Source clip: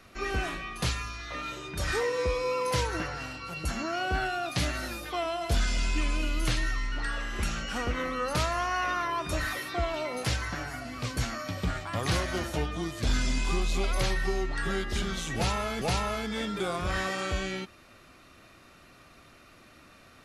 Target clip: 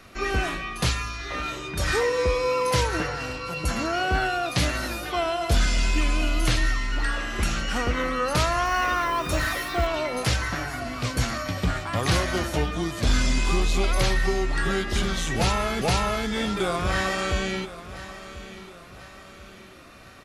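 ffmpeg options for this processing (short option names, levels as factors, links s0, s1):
-filter_complex "[0:a]aecho=1:1:1038|2076|3114|4152:0.178|0.0782|0.0344|0.0151,asettb=1/sr,asplit=3[s0][s1][s2];[s0]atrim=end=8.654[s3];[s1]atrim=start=8.65:end=9.87,asetpts=PTS-STARTPTS,afade=t=in:d=0.004:c=qsin,afade=t=out:st=1.216:d=0.004:c=qsin,acrusher=bits=9:dc=4:mix=0:aa=0.000001[s4];[s2]atrim=start=9.866[s5];[s3][s4]acrossfade=d=0.004:c1=hsin:c2=qsin[s6];[s6][s5]acrossfade=d=0.004:c1=qsin:c2=hsin,volume=1.88"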